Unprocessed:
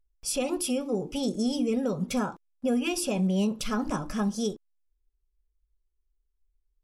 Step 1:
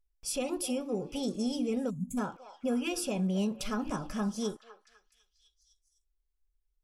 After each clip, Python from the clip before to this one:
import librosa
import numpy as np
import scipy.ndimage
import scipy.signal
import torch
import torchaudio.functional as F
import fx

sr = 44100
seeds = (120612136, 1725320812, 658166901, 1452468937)

y = fx.echo_stepped(x, sr, ms=252, hz=760.0, octaves=0.7, feedback_pct=70, wet_db=-11.0)
y = fx.spec_box(y, sr, start_s=1.9, length_s=0.28, low_hz=280.0, high_hz=6300.0, gain_db=-29)
y = y * 10.0 ** (-4.5 / 20.0)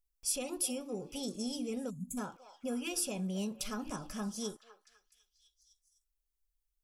y = fx.high_shelf(x, sr, hz=4600.0, db=11.5)
y = y * 10.0 ** (-6.5 / 20.0)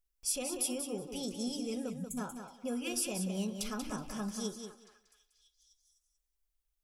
y = fx.echo_feedback(x, sr, ms=186, feedback_pct=16, wet_db=-7.5)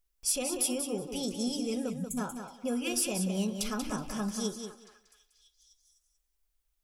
y = np.clip(x, -10.0 ** (-25.0 / 20.0), 10.0 ** (-25.0 / 20.0))
y = y * 10.0 ** (4.5 / 20.0)